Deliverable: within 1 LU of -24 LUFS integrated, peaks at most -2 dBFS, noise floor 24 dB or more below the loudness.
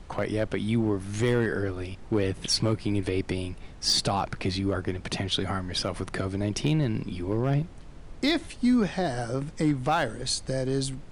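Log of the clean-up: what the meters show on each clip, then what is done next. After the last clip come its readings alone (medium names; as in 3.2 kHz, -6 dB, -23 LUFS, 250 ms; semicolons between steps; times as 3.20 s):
clipped samples 0.3%; clipping level -16.0 dBFS; noise floor -44 dBFS; noise floor target -52 dBFS; loudness -28.0 LUFS; peak level -16.0 dBFS; loudness target -24.0 LUFS
-> clip repair -16 dBFS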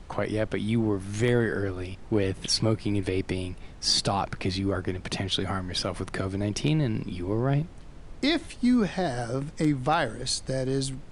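clipped samples 0.0%; noise floor -44 dBFS; noise floor target -52 dBFS
-> noise print and reduce 8 dB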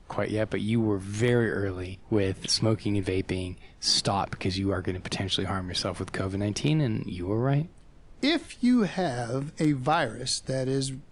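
noise floor -51 dBFS; noise floor target -52 dBFS
-> noise print and reduce 6 dB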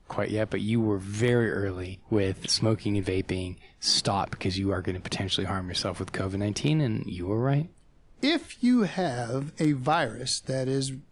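noise floor -55 dBFS; loudness -27.5 LUFS; peak level -11.0 dBFS; loudness target -24.0 LUFS
-> trim +3.5 dB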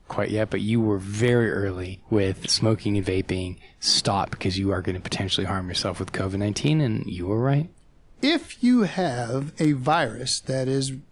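loudness -24.0 LUFS; peak level -7.5 dBFS; noise floor -52 dBFS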